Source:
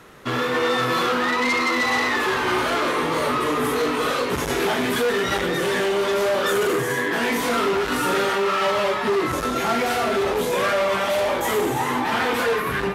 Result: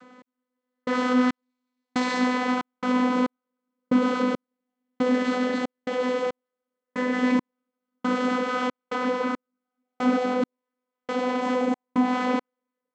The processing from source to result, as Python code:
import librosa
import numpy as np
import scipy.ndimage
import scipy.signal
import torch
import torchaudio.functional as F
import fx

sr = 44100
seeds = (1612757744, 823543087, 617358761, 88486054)

y = fx.tracing_dist(x, sr, depth_ms=0.12)
y = fx.high_shelf_res(y, sr, hz=2900.0, db=7.0, q=1.5, at=(1.32, 1.92))
y = y + 10.0 ** (-4.5 / 20.0) * np.pad(y, (int(281 * sr / 1000.0), 0))[:len(y)]
y = 10.0 ** (-16.5 / 20.0) * np.tanh(y / 10.0 ** (-16.5 / 20.0))
y = fx.echo_split(y, sr, split_hz=490.0, low_ms=732, high_ms=95, feedback_pct=52, wet_db=-8.0)
y = fx.vocoder(y, sr, bands=16, carrier='saw', carrier_hz=251.0)
y = fx.doubler(y, sr, ms=15.0, db=-8.5)
y = fx.step_gate(y, sr, bpm=69, pattern='x...xx...xxx.x', floor_db=-60.0, edge_ms=4.5)